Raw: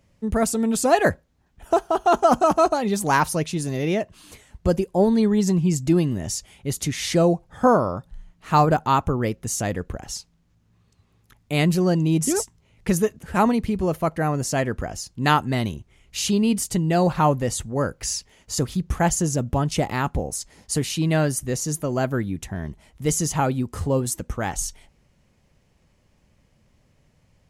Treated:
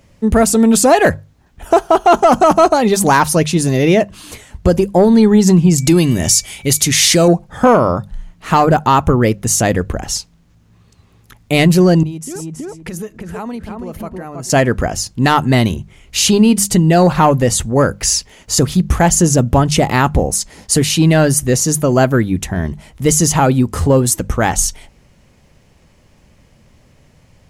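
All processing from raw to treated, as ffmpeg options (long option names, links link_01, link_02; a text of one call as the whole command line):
ffmpeg -i in.wav -filter_complex "[0:a]asettb=1/sr,asplit=3[link_01][link_02][link_03];[link_01]atrim=end=5.784[link_04];[link_02]atrim=start=5.78:end=7.28,asetpts=PTS-STARTPTS,afade=type=in:duration=0.004:curve=qsin,afade=type=out:start_time=1.496:duration=0.004:curve=qsin,highshelf=frequency=2500:gain=11.5,acompressor=threshold=-20dB:ratio=2:attack=3.2:release=140:knee=1:detection=peak,aeval=exprs='val(0)+0.00251*sin(2*PI*2300*n/s)':channel_layout=same[link_05];[link_03]atrim=start=7.276[link_06];[link_04][link_05]acrossfade=duration=0.004:curve1=hsin:curve2=qsin[link_07];[link_07][link_06]acrossfade=duration=0.004:curve1=qsin:curve2=hsin,asettb=1/sr,asplit=3[link_08][link_09][link_10];[link_08]atrim=end=12.034[link_11];[link_09]atrim=start=12.03:end=14.5,asetpts=PTS-STARTPTS,afade=type=in:duration=0.004:curve=qsin,afade=type=out:start_time=2.466:duration=0.004:curve=qsin,asplit=2[link_12][link_13];[link_13]adelay=324,lowpass=frequency=1600:poles=1,volume=-4dB,asplit=2[link_14][link_15];[link_15]adelay=324,lowpass=frequency=1600:poles=1,volume=0.16,asplit=2[link_16][link_17];[link_17]adelay=324,lowpass=frequency=1600:poles=1,volume=0.16[link_18];[link_12][link_14][link_16][link_18]amix=inputs=4:normalize=0,atrim=end_sample=108927,tremolo=f=2:d=0.7,acompressor=threshold=-36dB:ratio=6:attack=3.2:release=140:knee=1:detection=peak[link_19];[link_10]atrim=start=14.496[link_20];[link_11][link_19]acrossfade=duration=0.004:curve1=hsin:curve2=qsin[link_21];[link_21][link_20]acrossfade=duration=0.004:curve1=qsin:curve2=hsin,acontrast=77,bandreject=frequency=50:width_type=h:width=6,bandreject=frequency=100:width_type=h:width=6,bandreject=frequency=150:width_type=h:width=6,bandreject=frequency=200:width_type=h:width=6,alimiter=limit=-7.5dB:level=0:latency=1:release=151,volume=5.5dB" out.wav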